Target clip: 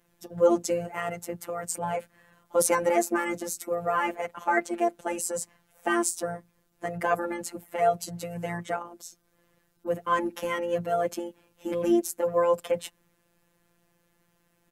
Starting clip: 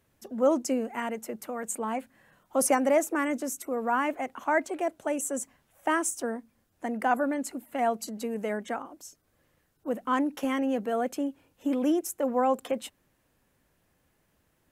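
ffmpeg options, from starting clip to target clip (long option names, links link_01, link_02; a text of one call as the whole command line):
ffmpeg -i in.wav -filter_complex "[0:a]afftfilt=real='hypot(re,im)*cos(PI*b)':imag='0':win_size=1024:overlap=0.75,asplit=2[link_01][link_02];[link_02]asetrate=29433,aresample=44100,atempo=1.49831,volume=-14dB[link_03];[link_01][link_03]amix=inputs=2:normalize=0,volume=5dB" out.wav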